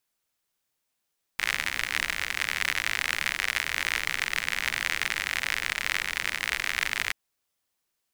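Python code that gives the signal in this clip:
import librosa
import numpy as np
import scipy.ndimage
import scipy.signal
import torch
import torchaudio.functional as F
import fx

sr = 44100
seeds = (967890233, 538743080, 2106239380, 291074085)

y = fx.rain(sr, seeds[0], length_s=5.73, drops_per_s=69.0, hz=2000.0, bed_db=-15.5)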